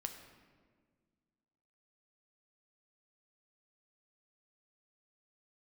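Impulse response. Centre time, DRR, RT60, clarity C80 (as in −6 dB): 25 ms, 5.0 dB, 1.7 s, 9.0 dB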